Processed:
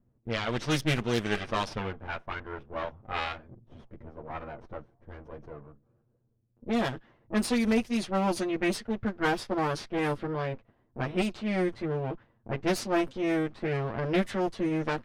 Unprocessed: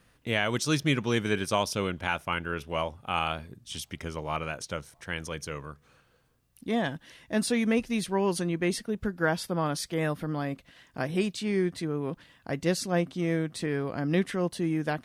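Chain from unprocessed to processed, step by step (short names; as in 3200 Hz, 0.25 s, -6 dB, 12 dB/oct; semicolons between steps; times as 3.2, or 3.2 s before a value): minimum comb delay 8.8 ms; wow and flutter 28 cents; low-pass opened by the level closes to 360 Hz, open at -23 dBFS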